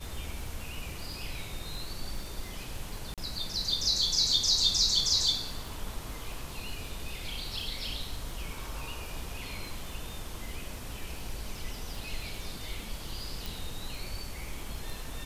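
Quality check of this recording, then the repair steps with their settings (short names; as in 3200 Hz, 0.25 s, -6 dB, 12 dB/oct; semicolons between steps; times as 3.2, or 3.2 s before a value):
crackle 40/s -39 dBFS
3.14–3.18 gap 37 ms
13.46 pop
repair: de-click; interpolate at 3.14, 37 ms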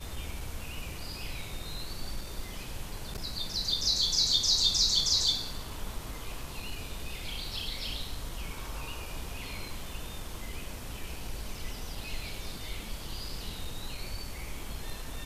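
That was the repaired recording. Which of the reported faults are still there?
none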